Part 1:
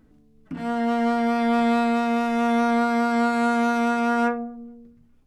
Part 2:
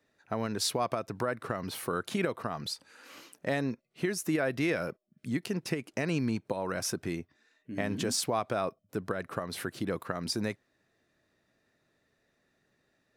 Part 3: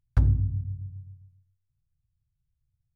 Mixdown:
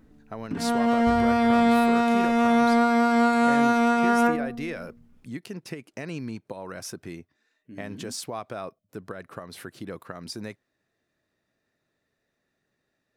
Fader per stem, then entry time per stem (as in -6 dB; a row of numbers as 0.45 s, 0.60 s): +1.0 dB, -4.0 dB, -15.0 dB; 0.00 s, 0.00 s, 0.90 s